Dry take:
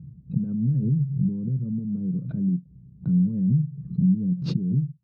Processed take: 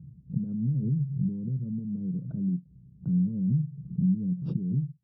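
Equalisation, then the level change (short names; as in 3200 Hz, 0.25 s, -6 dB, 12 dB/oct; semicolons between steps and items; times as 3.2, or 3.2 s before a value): running mean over 21 samples; -4.5 dB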